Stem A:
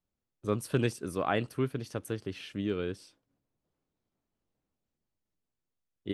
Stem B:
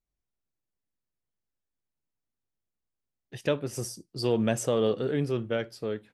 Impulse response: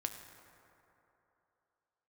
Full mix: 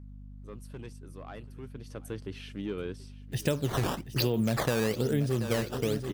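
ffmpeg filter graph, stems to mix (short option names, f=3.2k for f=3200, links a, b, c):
-filter_complex "[0:a]asoftclip=type=tanh:threshold=-21dB,volume=-2dB,afade=t=in:st=1.62:d=0.53:silence=0.251189,asplit=2[a][b];[b]volume=-19.5dB[c];[1:a]bass=f=250:g=8,treble=f=4k:g=9,acrusher=samples=12:mix=1:aa=0.000001:lfo=1:lforange=19.2:lforate=1.1,aeval=exprs='val(0)+0.00447*(sin(2*PI*50*n/s)+sin(2*PI*2*50*n/s)/2+sin(2*PI*3*50*n/s)/3+sin(2*PI*4*50*n/s)/4+sin(2*PI*5*50*n/s)/5)':c=same,volume=2.5dB,asplit=2[d][e];[e]volume=-14dB[f];[c][f]amix=inputs=2:normalize=0,aecho=0:1:732|1464|2196|2928|3660:1|0.33|0.109|0.0359|0.0119[g];[a][d][g]amix=inputs=3:normalize=0,acompressor=threshold=-24dB:ratio=6"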